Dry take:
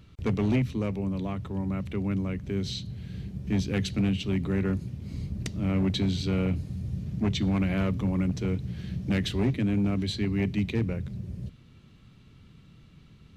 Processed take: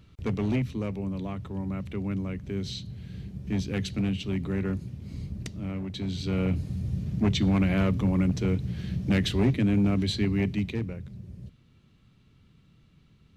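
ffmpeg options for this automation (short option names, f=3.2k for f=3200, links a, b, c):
-af "volume=10.5dB,afade=t=out:st=5.32:d=0.56:silence=0.398107,afade=t=in:st=5.88:d=0.8:silence=0.237137,afade=t=out:st=10.21:d=0.73:silence=0.375837"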